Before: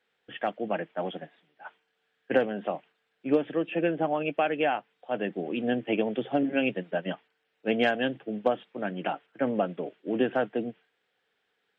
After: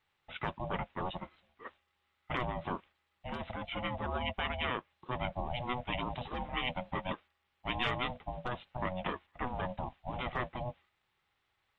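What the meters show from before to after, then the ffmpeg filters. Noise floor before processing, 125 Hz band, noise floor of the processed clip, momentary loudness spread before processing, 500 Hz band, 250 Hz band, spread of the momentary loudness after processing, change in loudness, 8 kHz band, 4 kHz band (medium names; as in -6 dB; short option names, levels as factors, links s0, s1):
-77 dBFS, +0.5 dB, -80 dBFS, 13 LU, -13.0 dB, -13.0 dB, 9 LU, -8.5 dB, no reading, -0.5 dB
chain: -af "afftfilt=real='re*lt(hypot(re,im),0.251)':imag='im*lt(hypot(re,im),0.251)':win_size=1024:overlap=0.75,aeval=exprs='val(0)*sin(2*PI*370*n/s)':c=same"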